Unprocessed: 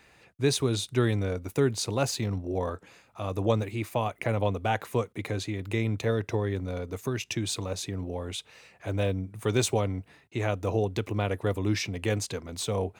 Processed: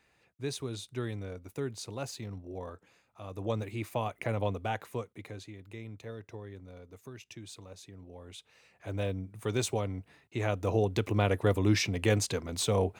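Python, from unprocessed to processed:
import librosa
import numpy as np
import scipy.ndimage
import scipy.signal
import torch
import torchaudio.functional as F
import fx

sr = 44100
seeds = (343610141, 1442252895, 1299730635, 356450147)

y = fx.gain(x, sr, db=fx.line((3.29, -11.0), (3.72, -4.5), (4.51, -4.5), (5.72, -16.0), (8.01, -16.0), (8.97, -5.5), (9.88, -5.5), (11.24, 1.5)))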